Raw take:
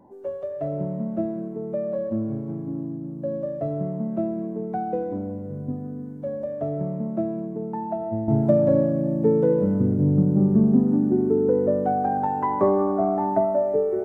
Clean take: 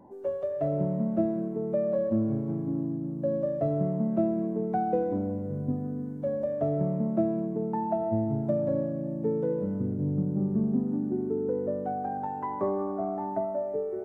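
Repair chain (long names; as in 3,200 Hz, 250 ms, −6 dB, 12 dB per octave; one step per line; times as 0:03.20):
level correction −9 dB, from 0:08.28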